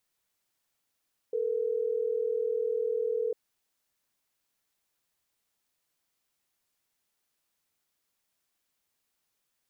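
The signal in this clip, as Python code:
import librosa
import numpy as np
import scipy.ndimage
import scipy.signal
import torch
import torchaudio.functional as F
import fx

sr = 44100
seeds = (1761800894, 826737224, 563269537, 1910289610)

y = fx.call_progress(sr, length_s=3.12, kind='ringback tone', level_db=-29.5)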